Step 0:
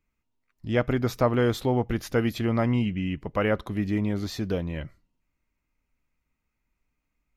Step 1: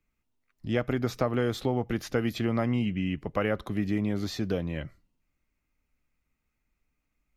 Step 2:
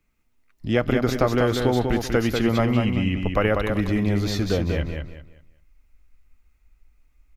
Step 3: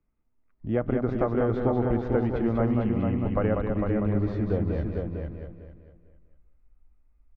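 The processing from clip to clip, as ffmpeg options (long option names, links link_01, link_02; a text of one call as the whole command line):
ffmpeg -i in.wav -filter_complex "[0:a]bandreject=frequency=960:width=13,acrossover=split=110|7600[link_01][link_02][link_03];[link_01]acompressor=threshold=-42dB:ratio=4[link_04];[link_02]acompressor=threshold=-23dB:ratio=4[link_05];[link_03]acompressor=threshold=-53dB:ratio=4[link_06];[link_04][link_05][link_06]amix=inputs=3:normalize=0" out.wav
ffmpeg -i in.wav -filter_complex "[0:a]asplit=2[link_01][link_02];[link_02]aecho=0:1:193|386|579|772:0.562|0.157|0.0441|0.0123[link_03];[link_01][link_03]amix=inputs=2:normalize=0,asubboost=boost=7:cutoff=60,volume=7dB" out.wav
ffmpeg -i in.wav -filter_complex "[0:a]lowpass=1100,asplit=2[link_01][link_02];[link_02]aecho=0:1:451|902|1353:0.562|0.118|0.0248[link_03];[link_01][link_03]amix=inputs=2:normalize=0,volume=-4.5dB" out.wav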